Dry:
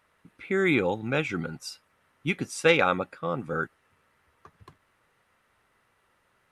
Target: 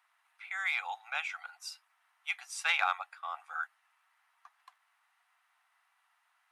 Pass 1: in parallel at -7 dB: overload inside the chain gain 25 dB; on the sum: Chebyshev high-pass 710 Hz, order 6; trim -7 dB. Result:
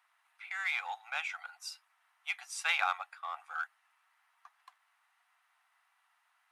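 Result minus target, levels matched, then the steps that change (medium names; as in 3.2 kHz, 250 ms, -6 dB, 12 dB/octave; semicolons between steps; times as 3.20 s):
overload inside the chain: distortion +9 dB
change: overload inside the chain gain 16 dB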